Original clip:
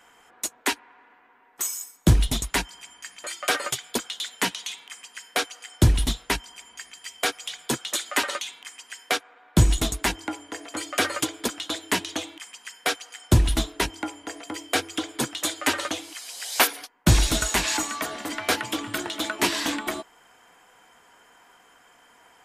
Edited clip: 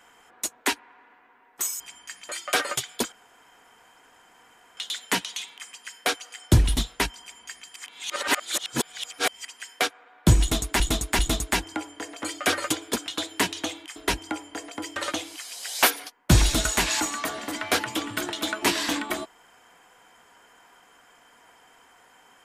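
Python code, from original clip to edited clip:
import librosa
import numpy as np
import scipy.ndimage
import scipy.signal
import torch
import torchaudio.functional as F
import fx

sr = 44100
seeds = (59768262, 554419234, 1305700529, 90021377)

y = fx.edit(x, sr, fx.cut(start_s=1.8, length_s=0.95),
    fx.insert_room_tone(at_s=4.07, length_s=1.65),
    fx.reverse_span(start_s=7.06, length_s=1.69),
    fx.repeat(start_s=9.71, length_s=0.39, count=3),
    fx.cut(start_s=12.48, length_s=1.2),
    fx.cut(start_s=14.68, length_s=1.05), tone=tone)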